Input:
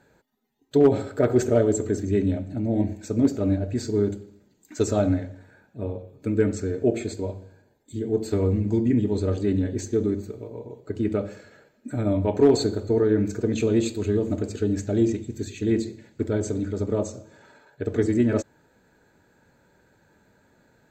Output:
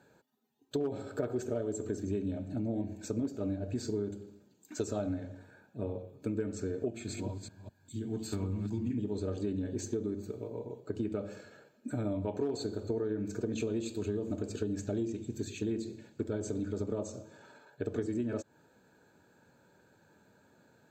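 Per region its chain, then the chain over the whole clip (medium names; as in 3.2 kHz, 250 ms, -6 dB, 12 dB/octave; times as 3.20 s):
6.88–8.98 s: chunks repeated in reverse 202 ms, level -5.5 dB + high-pass 47 Hz + peaking EQ 480 Hz -14.5 dB 1 oct
whole clip: high-pass 95 Hz; band-stop 2 kHz, Q 5.2; compression 6:1, threshold -28 dBFS; trim -3 dB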